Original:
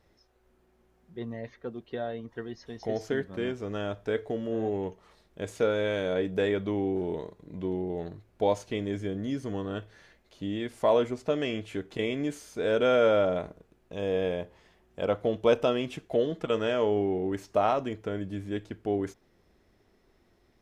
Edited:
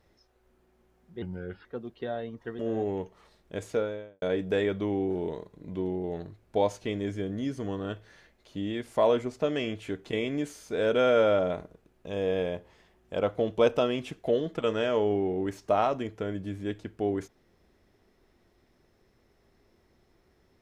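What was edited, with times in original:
1.22–1.56 s: speed 79%
2.50–4.45 s: delete
5.45–6.08 s: studio fade out

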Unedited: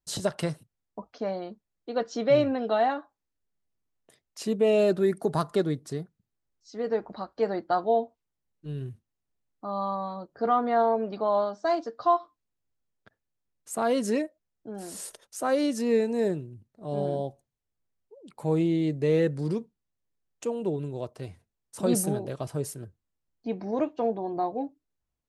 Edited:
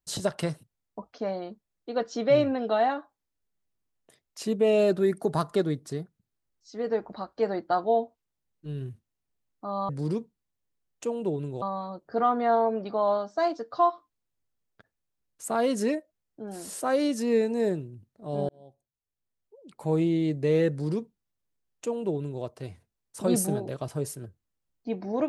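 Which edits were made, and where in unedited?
15.07–15.39 s: delete
17.08–18.46 s: fade in
19.29–21.02 s: copy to 9.89 s

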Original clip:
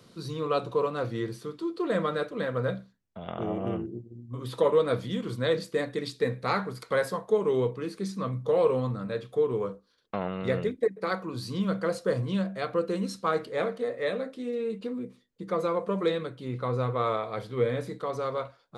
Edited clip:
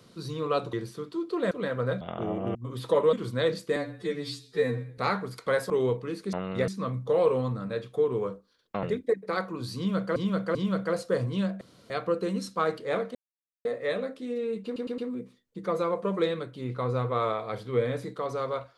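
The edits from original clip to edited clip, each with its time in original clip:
0.73–1.20 s: delete
1.98–2.28 s: delete
2.78–3.21 s: delete
3.75–4.24 s: delete
4.82–5.18 s: delete
5.81–6.42 s: stretch 2×
7.14–7.44 s: delete
10.22–10.57 s: move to 8.07 s
11.51–11.90 s: loop, 3 plays
12.57 s: insert room tone 0.29 s
13.82 s: insert silence 0.50 s
14.82 s: stutter 0.11 s, 4 plays

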